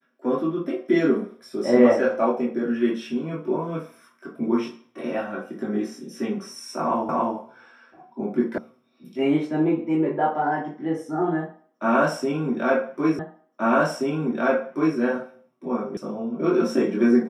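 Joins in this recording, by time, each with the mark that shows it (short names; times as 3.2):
7.09 repeat of the last 0.28 s
8.58 sound cut off
13.19 repeat of the last 1.78 s
15.97 sound cut off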